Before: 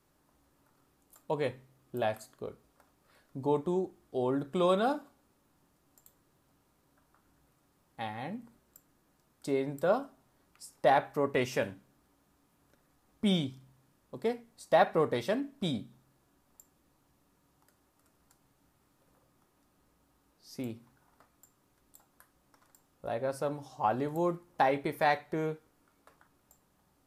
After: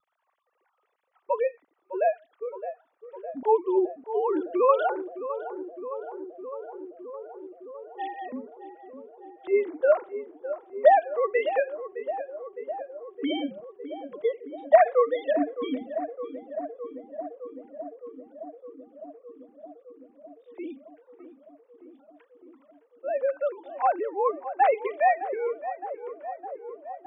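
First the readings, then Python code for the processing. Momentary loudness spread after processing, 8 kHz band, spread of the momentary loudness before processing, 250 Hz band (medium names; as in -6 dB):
21 LU, under -25 dB, 17 LU, +1.0 dB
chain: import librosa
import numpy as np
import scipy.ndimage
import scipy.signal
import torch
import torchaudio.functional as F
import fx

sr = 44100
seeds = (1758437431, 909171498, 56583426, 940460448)

y = fx.sine_speech(x, sr)
y = fx.echo_filtered(y, sr, ms=612, feedback_pct=83, hz=1300.0, wet_db=-11.5)
y = fx.vibrato(y, sr, rate_hz=0.82, depth_cents=21.0)
y = y * 10.0 ** (6.0 / 20.0)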